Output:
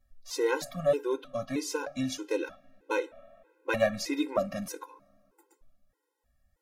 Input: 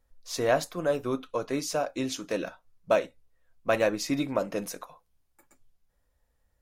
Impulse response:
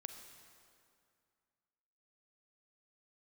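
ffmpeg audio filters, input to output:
-filter_complex "[0:a]asplit=2[link_01][link_02];[1:a]atrim=start_sample=2205,lowpass=3200[link_03];[link_02][link_03]afir=irnorm=-1:irlink=0,volume=-12dB[link_04];[link_01][link_04]amix=inputs=2:normalize=0,afftfilt=real='re*gt(sin(2*PI*1.6*pts/sr)*(1-2*mod(floor(b*sr/1024/270),2)),0)':imag='im*gt(sin(2*PI*1.6*pts/sr)*(1-2*mod(floor(b*sr/1024/270),2)),0)':win_size=1024:overlap=0.75,volume=1dB"

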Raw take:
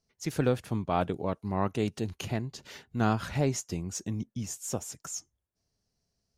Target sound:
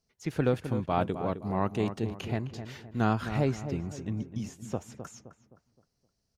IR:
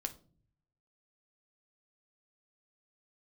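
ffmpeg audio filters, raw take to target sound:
-filter_complex "[0:a]acrossover=split=3600[link_01][link_02];[link_02]acompressor=threshold=-53dB:ratio=12[link_03];[link_01][link_03]amix=inputs=2:normalize=0,asplit=2[link_04][link_05];[link_05]adelay=260,lowpass=frequency=1600:poles=1,volume=-9.5dB,asplit=2[link_06][link_07];[link_07]adelay=260,lowpass=frequency=1600:poles=1,volume=0.42,asplit=2[link_08][link_09];[link_09]adelay=260,lowpass=frequency=1600:poles=1,volume=0.42,asplit=2[link_10][link_11];[link_11]adelay=260,lowpass=frequency=1600:poles=1,volume=0.42,asplit=2[link_12][link_13];[link_13]adelay=260,lowpass=frequency=1600:poles=1,volume=0.42[link_14];[link_04][link_06][link_08][link_10][link_12][link_14]amix=inputs=6:normalize=0"

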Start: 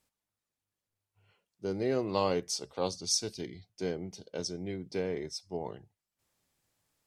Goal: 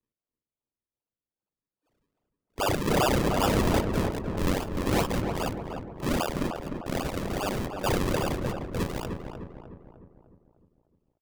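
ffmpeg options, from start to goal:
ffmpeg -i in.wav -filter_complex "[0:a]afftfilt=real='real(if(lt(b,272),68*(eq(floor(b/68),0)*1+eq(floor(b/68),1)*2+eq(floor(b/68),2)*3+eq(floor(b/68),3)*0)+mod(b,68),b),0)':imag='imag(if(lt(b,272),68*(eq(floor(b/68),0)*1+eq(floor(b/68),1)*2+eq(floor(b/68),2)*3+eq(floor(b/68),3)*0)+mod(b,68),b),0)':win_size=2048:overlap=0.75,afwtdn=0.00708,highshelf=frequency=5400:gain=-10,aexciter=amount=8.5:drive=5:freq=2500,lowshelf=frequency=210:gain=7,atempo=0.63,aresample=16000,volume=6.5dB,asoftclip=hard,volume=-6.5dB,aresample=44100,acrusher=samples=42:mix=1:aa=0.000001:lfo=1:lforange=42:lforate=2.5,asoftclip=type=tanh:threshold=-9.5dB,asplit=2[link_01][link_02];[link_02]adelay=303,lowpass=frequency=1500:poles=1,volume=-5dB,asplit=2[link_03][link_04];[link_04]adelay=303,lowpass=frequency=1500:poles=1,volume=0.53,asplit=2[link_05][link_06];[link_06]adelay=303,lowpass=frequency=1500:poles=1,volume=0.53,asplit=2[link_07][link_08];[link_08]adelay=303,lowpass=frequency=1500:poles=1,volume=0.53,asplit=2[link_09][link_10];[link_10]adelay=303,lowpass=frequency=1500:poles=1,volume=0.53,asplit=2[link_11][link_12];[link_12]adelay=303,lowpass=frequency=1500:poles=1,volume=0.53,asplit=2[link_13][link_14];[link_14]adelay=303,lowpass=frequency=1500:poles=1,volume=0.53[link_15];[link_03][link_05][link_07][link_09][link_11][link_13][link_15]amix=inputs=7:normalize=0[link_16];[link_01][link_16]amix=inputs=2:normalize=0,volume=-7.5dB" out.wav

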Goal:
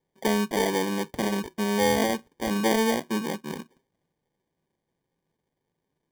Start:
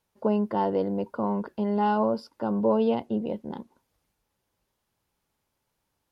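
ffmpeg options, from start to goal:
ffmpeg -i in.wav -af "highpass=frequency=110:width=0.5412,highpass=frequency=110:width=1.3066,equalizer=frequency=160:width_type=q:width=4:gain=10,equalizer=frequency=260:width_type=q:width=4:gain=4,equalizer=frequency=370:width_type=q:width=4:gain=8,equalizer=frequency=810:width_type=q:width=4:gain=5,equalizer=frequency=1200:width_type=q:width=4:gain=8,lowpass=frequency=2700:width=0.5412,lowpass=frequency=2700:width=1.3066,acrusher=samples=33:mix=1:aa=0.000001,volume=-3.5dB" out.wav

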